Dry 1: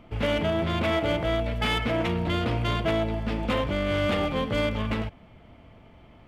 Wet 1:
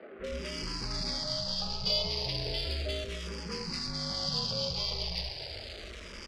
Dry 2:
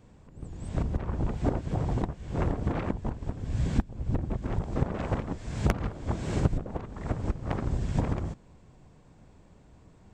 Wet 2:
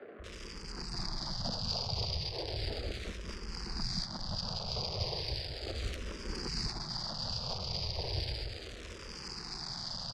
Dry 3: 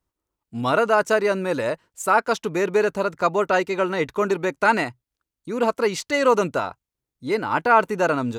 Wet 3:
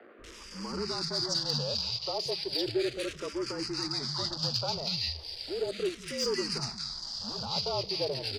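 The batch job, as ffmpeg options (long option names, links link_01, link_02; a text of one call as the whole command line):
ffmpeg -i in.wav -filter_complex "[0:a]aeval=exprs='val(0)+0.5*0.0376*sgn(val(0))':channel_layout=same,highpass=frequency=65:width=0.5412,highpass=frequency=65:width=1.3066,equalizer=frequency=110:width=0.99:gain=-2,acrossover=split=130|580|3300[link_01][link_02][link_03][link_04];[link_03]acompressor=threshold=-36dB:ratio=6[link_05];[link_01][link_02][link_05][link_04]amix=inputs=4:normalize=0,afreqshift=-44,acrusher=bits=2:mode=log:mix=0:aa=0.000001,lowpass=frequency=4800:width_type=q:width=15,asoftclip=type=tanh:threshold=-9dB,equalizer=frequency=280:width=5.1:gain=-11.5,acrossover=split=200|1600[link_06][link_07][link_08];[link_06]adelay=180[link_09];[link_08]adelay=240[link_10];[link_09][link_07][link_10]amix=inputs=3:normalize=0,asplit=2[link_11][link_12];[link_12]afreqshift=-0.35[link_13];[link_11][link_13]amix=inputs=2:normalize=1,volume=-6dB" out.wav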